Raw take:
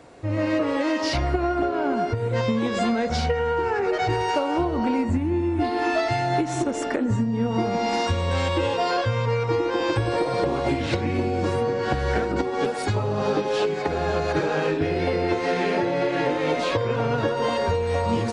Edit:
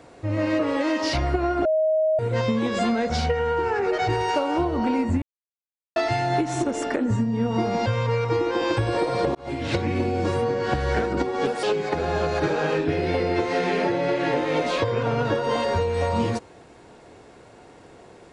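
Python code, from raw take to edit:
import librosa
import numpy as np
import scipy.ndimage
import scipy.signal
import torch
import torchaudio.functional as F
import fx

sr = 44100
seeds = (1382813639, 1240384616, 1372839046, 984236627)

y = fx.edit(x, sr, fx.bleep(start_s=1.65, length_s=0.54, hz=629.0, db=-17.5),
    fx.silence(start_s=5.22, length_s=0.74),
    fx.cut(start_s=7.86, length_s=1.19),
    fx.fade_in_span(start_s=10.54, length_s=0.37),
    fx.cut(start_s=12.82, length_s=0.74), tone=tone)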